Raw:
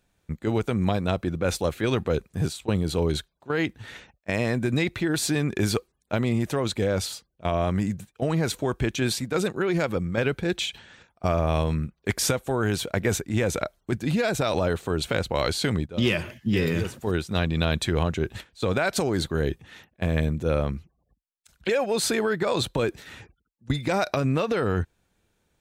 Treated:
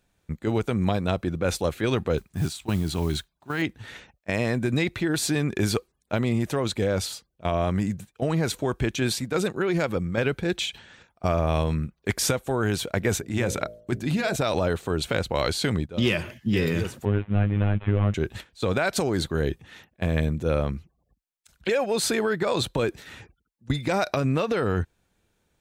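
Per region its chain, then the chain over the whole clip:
2.17–3.62 bell 490 Hz -13.5 dB 0.38 oct + modulation noise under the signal 25 dB
13.18–14.36 notch 480 Hz, Q 16 + de-hum 55.08 Hz, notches 12
17.05–18.14 CVSD 16 kbps + low shelf 200 Hz +9.5 dB + robotiser 102 Hz
whole clip: dry

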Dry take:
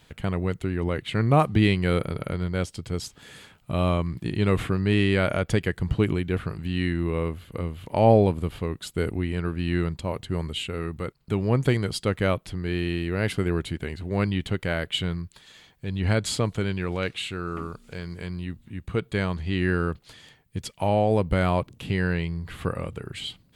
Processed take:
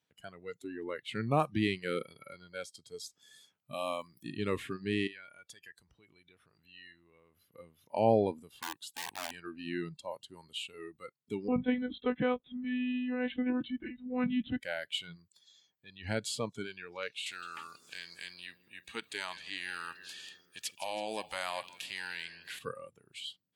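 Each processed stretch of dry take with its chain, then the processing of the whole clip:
3.73–4.23 HPF 130 Hz 6 dB/oct + high shelf 6800 Hz +12 dB
5.07–7.36 bell 200 Hz -8 dB 2.3 oct + compressor 3:1, threshold -35 dBFS
8.48–9.31 notch 640 Hz, Q 8 + wrapped overs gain 22 dB
11.48–14.61 low shelf 420 Hz +7 dB + monotone LPC vocoder at 8 kHz 250 Hz
17.26–22.59 high shelf 7200 Hz -6 dB + feedback echo 0.163 s, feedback 58%, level -20 dB + spectral compressor 2:1
whole clip: spectral noise reduction 18 dB; HPF 160 Hz 12 dB/oct; gain -8 dB

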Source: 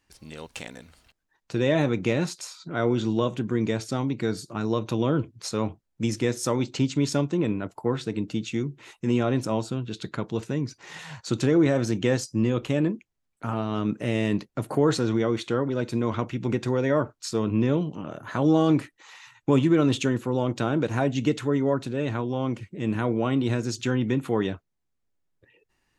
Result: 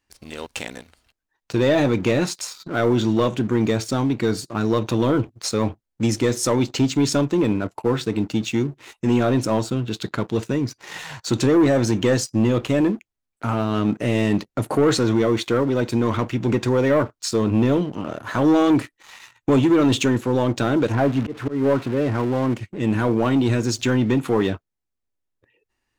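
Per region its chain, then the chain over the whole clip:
20.92–22.54 switching spikes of -17 dBFS + LPF 1500 Hz + auto swell 0.185 s
whole clip: bell 160 Hz -10.5 dB 0.22 oct; sample leveller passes 2

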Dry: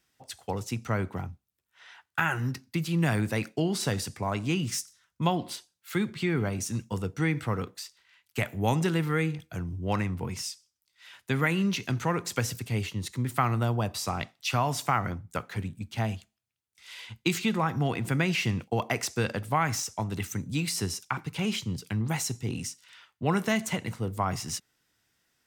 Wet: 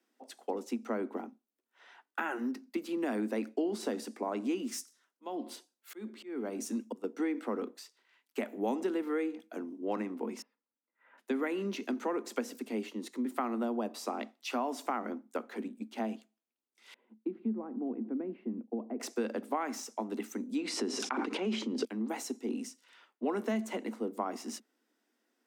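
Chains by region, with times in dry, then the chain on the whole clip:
4.44–7.04 auto swell 0.424 s + high shelf 5600 Hz +4.5 dB
10.42–11.18 compressor 2:1, threshold -43 dBFS + LPF 1800 Hz 24 dB/oct + notch comb 370 Hz
16.94–19 band-pass 150 Hz, Q 0.91 + air absorption 340 m
20.58–21.85 air absorption 85 m + fast leveller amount 100%
whole clip: steep high-pass 220 Hz 96 dB/oct; tilt shelf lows +8.5 dB, about 920 Hz; compressor 2:1, threshold -31 dBFS; gain -2 dB

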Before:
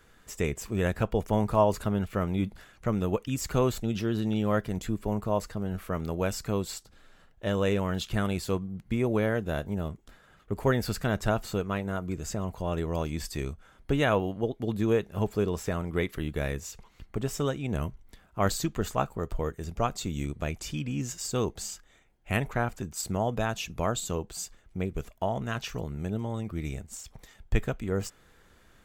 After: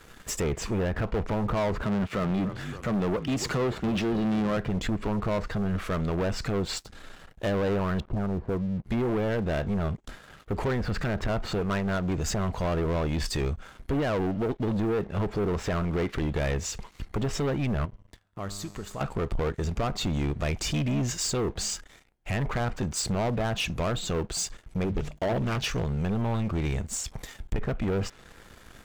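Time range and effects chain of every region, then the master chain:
1.83–4.57 HPF 130 Hz + frequency-shifting echo 0.284 s, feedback 56%, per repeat -48 Hz, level -19.5 dB
8–8.84 LPF 1000 Hz 24 dB/oct + compressor 2:1, threshold -34 dBFS
17.85–19.01 high shelf 10000 Hz -6 dB + compressor 2.5:1, threshold -37 dBFS + resonator 100 Hz, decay 2 s, mix 70%
24.84–25.67 bell 1200 Hz -5 dB 0.92 oct + notches 50/100/150/200 Hz + Doppler distortion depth 0.56 ms
whole clip: treble ducked by the level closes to 1700 Hz, closed at -23.5 dBFS; limiter -22 dBFS; sample leveller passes 3

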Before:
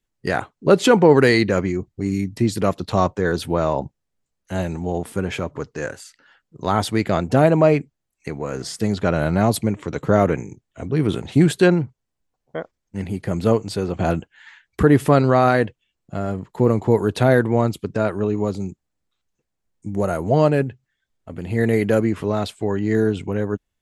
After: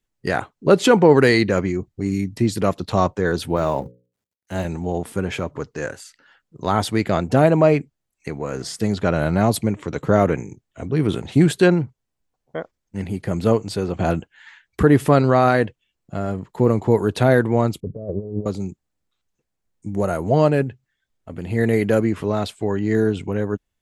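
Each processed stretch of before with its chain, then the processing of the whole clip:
3.56–4.65 G.711 law mismatch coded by A + HPF 51 Hz + notches 60/120/180/240/300/360/420/480/540 Hz
17.8–18.46 steep low-pass 570 Hz + comb 1.7 ms, depth 44% + negative-ratio compressor -26 dBFS, ratio -0.5
whole clip: dry

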